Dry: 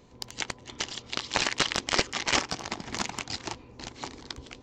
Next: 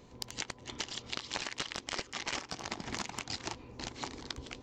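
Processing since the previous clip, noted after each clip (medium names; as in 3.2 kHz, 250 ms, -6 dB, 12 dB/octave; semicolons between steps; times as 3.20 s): compression 6:1, threshold -34 dBFS, peak gain reduction 15 dB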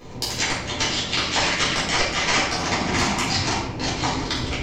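simulated room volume 240 m³, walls mixed, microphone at 3.8 m; trim +6.5 dB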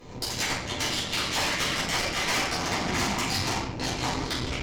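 valve stage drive 22 dB, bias 0.75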